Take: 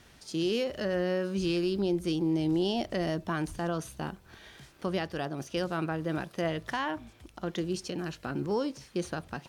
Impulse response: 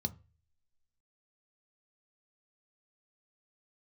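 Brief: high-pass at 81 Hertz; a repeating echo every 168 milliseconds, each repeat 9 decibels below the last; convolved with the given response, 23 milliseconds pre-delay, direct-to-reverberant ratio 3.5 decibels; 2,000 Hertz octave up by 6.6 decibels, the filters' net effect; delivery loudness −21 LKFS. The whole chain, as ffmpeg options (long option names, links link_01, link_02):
-filter_complex "[0:a]highpass=81,equalizer=frequency=2000:width_type=o:gain=8.5,aecho=1:1:168|336|504|672:0.355|0.124|0.0435|0.0152,asplit=2[link_01][link_02];[1:a]atrim=start_sample=2205,adelay=23[link_03];[link_02][link_03]afir=irnorm=-1:irlink=0,volume=-4dB[link_04];[link_01][link_04]amix=inputs=2:normalize=0,volume=5dB"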